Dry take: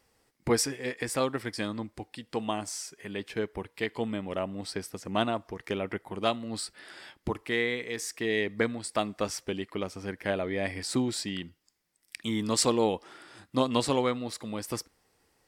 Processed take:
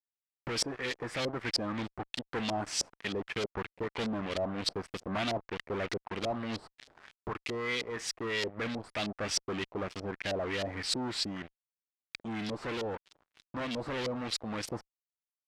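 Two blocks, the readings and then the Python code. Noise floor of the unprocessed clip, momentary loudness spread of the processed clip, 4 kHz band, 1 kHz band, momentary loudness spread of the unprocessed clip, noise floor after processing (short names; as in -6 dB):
-72 dBFS, 7 LU, 0.0 dB, -4.5 dB, 11 LU, under -85 dBFS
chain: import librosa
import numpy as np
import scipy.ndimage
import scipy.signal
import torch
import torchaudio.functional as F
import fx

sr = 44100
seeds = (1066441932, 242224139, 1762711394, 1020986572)

y = fx.fuzz(x, sr, gain_db=39.0, gate_db=-43.0)
y = fx.rider(y, sr, range_db=10, speed_s=2.0)
y = scipy.signal.lfilter([1.0, -0.8], [1.0], y)
y = fx.filter_lfo_lowpass(y, sr, shape='saw_up', hz=3.2, low_hz=510.0, high_hz=4700.0, q=1.6)
y = F.gain(torch.from_numpy(y), -6.0).numpy()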